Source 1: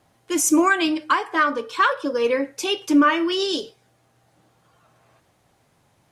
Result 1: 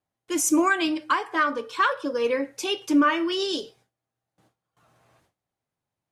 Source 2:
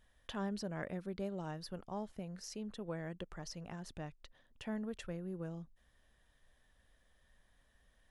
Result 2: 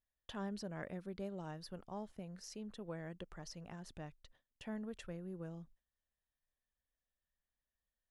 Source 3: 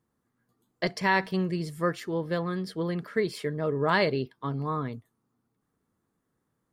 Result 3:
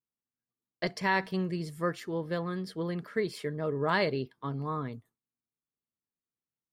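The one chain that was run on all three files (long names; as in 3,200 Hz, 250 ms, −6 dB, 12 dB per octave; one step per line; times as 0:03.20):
noise gate with hold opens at −49 dBFS
level −3.5 dB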